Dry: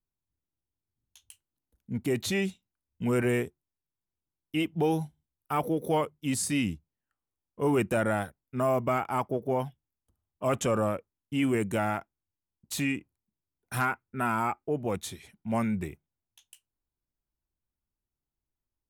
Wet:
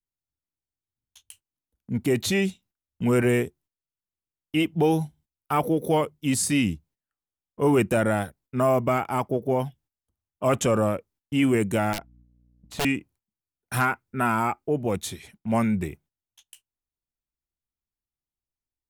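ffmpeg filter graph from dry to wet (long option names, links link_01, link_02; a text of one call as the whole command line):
ffmpeg -i in.wav -filter_complex "[0:a]asettb=1/sr,asplit=3[link_01][link_02][link_03];[link_01]atrim=end=11.934[link_04];[link_02]atrim=start=11.93:end=12.85,asetpts=PTS-STARTPTS,afade=type=in:duration=0.004:curve=qsin,afade=type=out:start_time=0.916:duration=0.004:curve=qsin,lowpass=frequency=1300:poles=1,aeval=exprs='(mod(20*val(0)+1,2)-1)/20':channel_layout=same,aeval=exprs='val(0)+0.00112*(sin(2*PI*60*n/s)+sin(2*PI*2*60*n/s)/2+sin(2*PI*3*60*n/s)/3+sin(2*PI*4*60*n/s)/4+sin(2*PI*5*60*n/s)/5)':channel_layout=same[link_05];[link_03]atrim=start=12.846[link_06];[link_04][link_05]acrossfade=duration=0.004:curve1=hsin:curve2=qsin[link_07];[link_07][link_06]acrossfade=duration=0.004:curve1=qsin:curve2=hsin,agate=range=-12dB:threshold=-59dB:ratio=16:detection=peak,adynamicequalizer=threshold=0.00794:dfrequency=1200:dqfactor=0.81:tfrequency=1200:tqfactor=0.81:attack=5:release=100:ratio=0.375:range=2.5:mode=cutabove:tftype=bell,volume=5.5dB" out.wav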